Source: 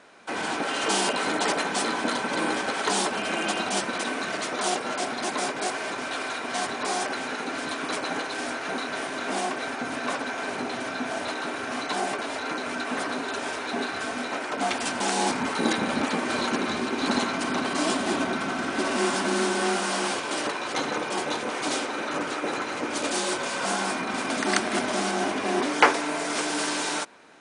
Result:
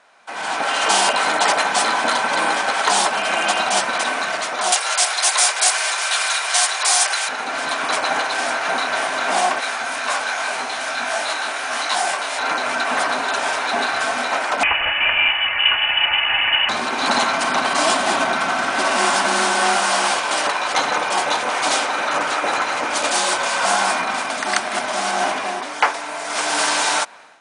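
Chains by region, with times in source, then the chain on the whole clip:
4.72–7.29 s: brick-wall FIR high-pass 310 Hz + tilt EQ +4.5 dB/octave
9.60–12.39 s: tilt EQ +2 dB/octave + doubling 22 ms -12.5 dB + detune thickener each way 46 cents
14.63–16.69 s: high-pass 130 Hz + comb 3.5 ms, depth 40% + frequency inversion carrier 3.2 kHz
whole clip: resonant low shelf 520 Hz -9 dB, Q 1.5; level rider gain up to 11.5 dB; trim -1.5 dB

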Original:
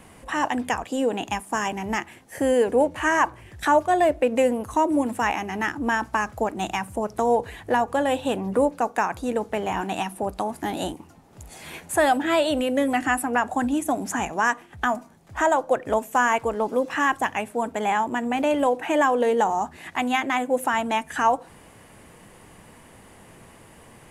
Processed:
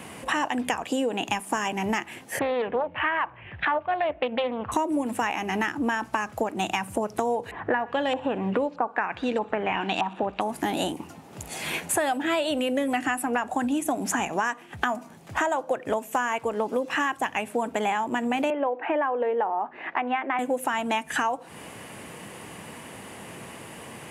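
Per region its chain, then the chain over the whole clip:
2.39–4.72 s: steep low-pass 3 kHz + peaking EQ 320 Hz -9 dB 1.2 oct + loudspeaker Doppler distortion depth 0.23 ms
7.51–10.41 s: LFO low-pass saw up 1.6 Hz 960–5200 Hz + thinning echo 62 ms, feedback 76%, high-pass 950 Hz, level -22.5 dB
18.50–20.39 s: Gaussian low-pass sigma 1.9 samples + three-band isolator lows -21 dB, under 290 Hz, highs -22 dB, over 2.4 kHz
whole clip: high-pass 120 Hz 12 dB/octave; peaking EQ 2.7 kHz +4 dB 0.58 oct; compression 6:1, threshold -31 dBFS; trim +7.5 dB

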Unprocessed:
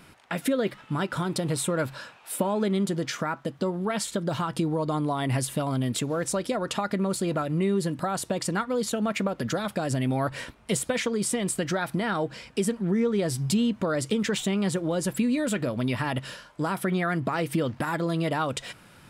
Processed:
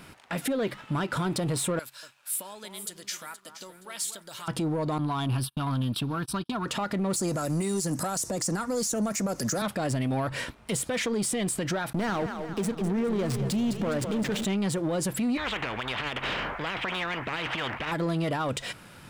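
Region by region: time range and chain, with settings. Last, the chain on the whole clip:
1.79–4.48 s: pre-emphasis filter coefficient 0.97 + echo whose repeats swap between lows and highs 236 ms, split 1.4 kHz, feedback 57%, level -8.5 dB
4.98–6.66 s: gate -33 dBFS, range -34 dB + static phaser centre 2 kHz, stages 6
7.16–9.62 s: resonant high shelf 4.5 kHz +11 dB, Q 3 + three bands compressed up and down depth 70%
11.93–14.45 s: hysteresis with a dead band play -26.5 dBFS + two-band feedback delay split 350 Hz, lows 272 ms, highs 206 ms, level -10 dB
15.37–17.92 s: low-pass 2.2 kHz 24 dB/octave + spectrum-flattening compressor 10:1
whole clip: peak limiter -22 dBFS; waveshaping leveller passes 1

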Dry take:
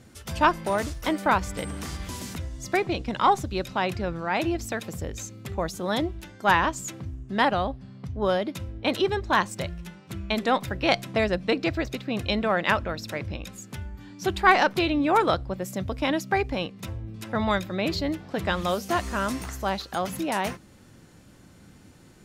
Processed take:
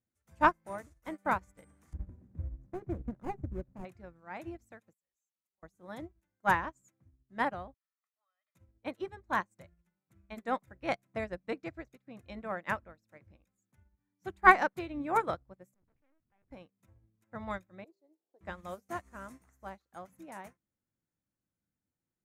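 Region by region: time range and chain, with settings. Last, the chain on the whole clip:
1.93–3.85 s: median filter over 41 samples + tilt EQ -2.5 dB/octave
4.93–5.63 s: pre-emphasis filter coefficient 0.97 + compression 2.5:1, threshold -57 dBFS + comb 5.4 ms, depth 92%
7.74–8.55 s: high-pass 1.1 kHz 24 dB/octave + compression 20:1, threshold -43 dBFS + comb 1.6 ms, depth 84%
15.74–16.51 s: valve stage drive 36 dB, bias 0.6 + LPC vocoder at 8 kHz pitch kept + loudspeaker Doppler distortion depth 0.58 ms
17.84–18.41 s: ladder high-pass 340 Hz, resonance 60% + high-order bell 2 kHz -14 dB
whole clip: high-order bell 3.8 kHz -9.5 dB 1.2 oct; band-stop 410 Hz, Q 13; upward expansion 2.5:1, over -40 dBFS

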